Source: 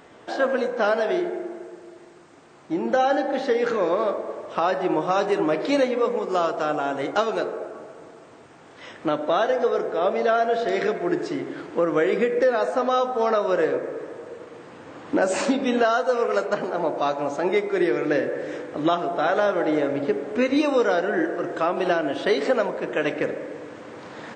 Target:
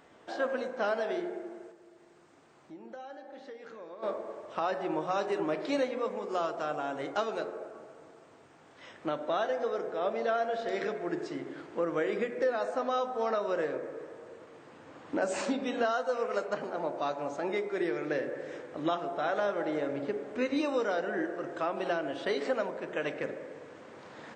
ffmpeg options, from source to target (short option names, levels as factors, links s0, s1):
-filter_complex "[0:a]bandreject=f=60:t=h:w=6,bandreject=f=120:t=h:w=6,bandreject=f=180:t=h:w=6,bandreject=f=240:t=h:w=6,bandreject=f=300:t=h:w=6,bandreject=f=360:t=h:w=6,bandreject=f=420:t=h:w=6,bandreject=f=480:t=h:w=6,asplit=3[s0][s1][s2];[s0]afade=t=out:st=1.71:d=0.02[s3];[s1]acompressor=threshold=0.00447:ratio=2,afade=t=in:st=1.71:d=0.02,afade=t=out:st=4.02:d=0.02[s4];[s2]afade=t=in:st=4.02:d=0.02[s5];[s3][s4][s5]amix=inputs=3:normalize=0,volume=0.355"